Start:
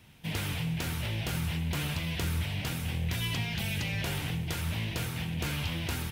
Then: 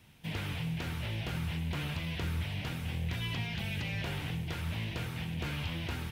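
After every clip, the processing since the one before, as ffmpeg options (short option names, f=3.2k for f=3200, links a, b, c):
-filter_complex "[0:a]acrossover=split=4200[a][b];[b]acompressor=threshold=-51dB:ratio=4:attack=1:release=60[c];[a][c]amix=inputs=2:normalize=0,volume=-3dB"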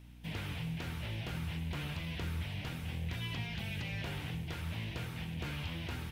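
-af "aeval=exprs='val(0)+0.00355*(sin(2*PI*60*n/s)+sin(2*PI*2*60*n/s)/2+sin(2*PI*3*60*n/s)/3+sin(2*PI*4*60*n/s)/4+sin(2*PI*5*60*n/s)/5)':c=same,volume=-3.5dB"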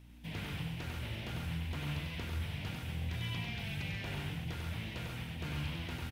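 -af "aecho=1:1:96|137:0.596|0.473,volume=-2dB"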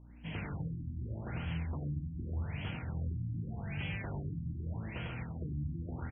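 -af "afftfilt=real='re*lt(b*sr/1024,300*pow(3400/300,0.5+0.5*sin(2*PI*0.84*pts/sr)))':imag='im*lt(b*sr/1024,300*pow(3400/300,0.5+0.5*sin(2*PI*0.84*pts/sr)))':win_size=1024:overlap=0.75,volume=1.5dB"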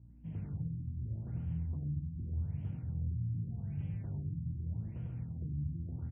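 -af "bandpass=f=110:t=q:w=1.2:csg=0,volume=2.5dB"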